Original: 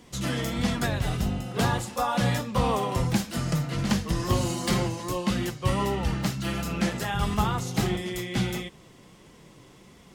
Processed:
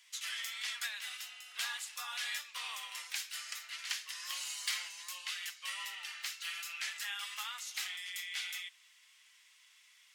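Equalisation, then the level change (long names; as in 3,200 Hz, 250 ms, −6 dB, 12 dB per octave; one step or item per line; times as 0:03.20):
four-pole ladder high-pass 1,600 Hz, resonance 25%
+1.0 dB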